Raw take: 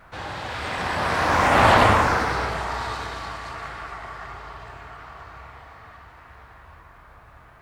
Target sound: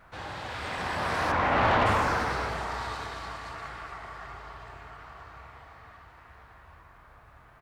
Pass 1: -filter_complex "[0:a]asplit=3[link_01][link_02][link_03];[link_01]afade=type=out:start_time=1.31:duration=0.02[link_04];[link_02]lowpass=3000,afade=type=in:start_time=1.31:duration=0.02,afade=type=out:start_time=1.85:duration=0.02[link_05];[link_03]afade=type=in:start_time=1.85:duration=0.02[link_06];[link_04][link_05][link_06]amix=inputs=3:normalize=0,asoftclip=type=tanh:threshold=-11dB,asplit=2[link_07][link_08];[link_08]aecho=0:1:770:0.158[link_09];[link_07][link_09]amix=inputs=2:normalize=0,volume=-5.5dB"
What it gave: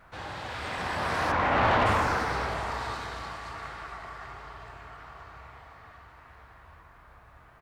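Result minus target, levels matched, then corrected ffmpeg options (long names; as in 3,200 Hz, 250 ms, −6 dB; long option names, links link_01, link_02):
echo 357 ms late
-filter_complex "[0:a]asplit=3[link_01][link_02][link_03];[link_01]afade=type=out:start_time=1.31:duration=0.02[link_04];[link_02]lowpass=3000,afade=type=in:start_time=1.31:duration=0.02,afade=type=out:start_time=1.85:duration=0.02[link_05];[link_03]afade=type=in:start_time=1.85:duration=0.02[link_06];[link_04][link_05][link_06]amix=inputs=3:normalize=0,asoftclip=type=tanh:threshold=-11dB,asplit=2[link_07][link_08];[link_08]aecho=0:1:413:0.158[link_09];[link_07][link_09]amix=inputs=2:normalize=0,volume=-5.5dB"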